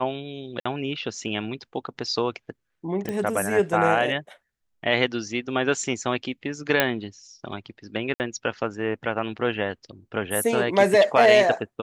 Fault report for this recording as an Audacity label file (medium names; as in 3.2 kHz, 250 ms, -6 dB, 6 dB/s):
0.600000	0.660000	dropout 55 ms
3.090000	3.090000	pop -16 dBFS
6.800000	6.800000	pop -3 dBFS
8.140000	8.200000	dropout 59 ms